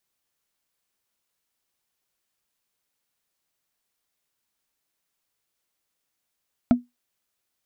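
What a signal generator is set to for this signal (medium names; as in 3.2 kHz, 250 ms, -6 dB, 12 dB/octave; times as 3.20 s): wood hit, lowest mode 244 Hz, decay 0.18 s, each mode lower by 8 dB, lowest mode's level -9 dB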